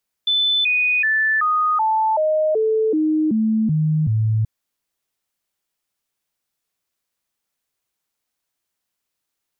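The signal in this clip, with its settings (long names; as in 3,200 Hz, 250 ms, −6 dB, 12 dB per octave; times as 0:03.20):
stepped sweep 3,510 Hz down, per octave 2, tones 11, 0.38 s, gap 0.00 s −15 dBFS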